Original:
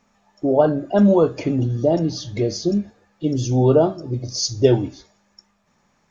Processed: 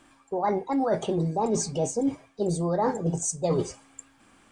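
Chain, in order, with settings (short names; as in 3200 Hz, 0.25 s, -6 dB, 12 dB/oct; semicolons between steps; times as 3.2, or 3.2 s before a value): speed mistake 33 rpm record played at 45 rpm; reverse; compressor 12:1, threshold -28 dBFS, peak gain reduction 19.5 dB; reverse; gain +5.5 dB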